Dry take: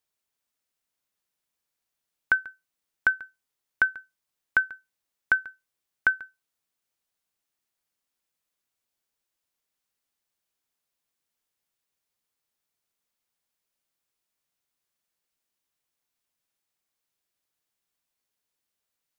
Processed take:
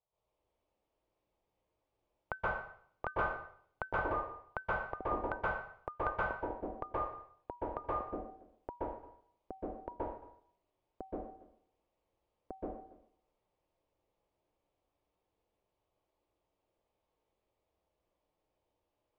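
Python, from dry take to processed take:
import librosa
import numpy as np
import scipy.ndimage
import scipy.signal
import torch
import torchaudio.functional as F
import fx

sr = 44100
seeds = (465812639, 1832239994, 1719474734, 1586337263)

y = scipy.signal.sosfilt(scipy.signal.butter(2, 1300.0, 'lowpass', fs=sr, output='sos'), x)
y = fx.fixed_phaser(y, sr, hz=670.0, stages=4)
y = fx.echo_pitch(y, sr, ms=124, semitones=-4, count=3, db_per_echo=-3.0)
y = fx.rev_plate(y, sr, seeds[0], rt60_s=0.58, hf_ratio=1.0, predelay_ms=115, drr_db=-9.0)
y = y * 10.0 ** (3.0 / 20.0)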